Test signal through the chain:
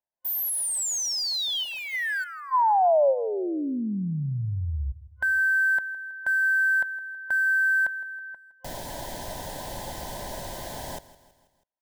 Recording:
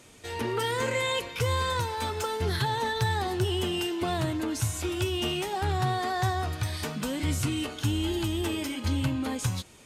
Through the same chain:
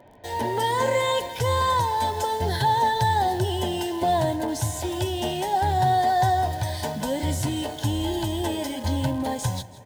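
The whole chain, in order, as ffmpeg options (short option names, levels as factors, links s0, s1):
-filter_complex "[0:a]acrossover=split=2600[s0][s1];[s1]acrusher=bits=7:mix=0:aa=0.000001[s2];[s0][s2]amix=inputs=2:normalize=0,superequalizer=8b=2.82:9b=2.51:10b=0.282:12b=0.447,aecho=1:1:162|324|486|648:0.126|0.0655|0.034|0.0177,volume=1.26"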